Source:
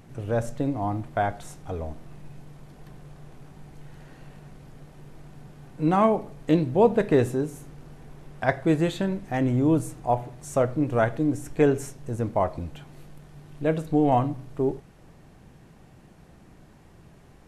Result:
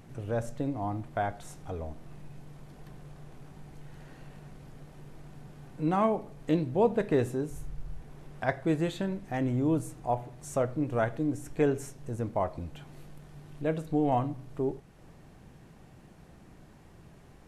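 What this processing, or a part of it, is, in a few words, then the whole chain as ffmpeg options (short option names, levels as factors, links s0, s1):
parallel compression: -filter_complex "[0:a]asplit=3[s0][s1][s2];[s0]afade=t=out:st=7.49:d=0.02[s3];[s1]asubboost=boost=7:cutoff=87,afade=t=in:st=7.49:d=0.02,afade=t=out:st=8:d=0.02[s4];[s2]afade=t=in:st=8:d=0.02[s5];[s3][s4][s5]amix=inputs=3:normalize=0,asplit=2[s6][s7];[s7]acompressor=threshold=0.01:ratio=6,volume=0.708[s8];[s6][s8]amix=inputs=2:normalize=0,volume=0.473"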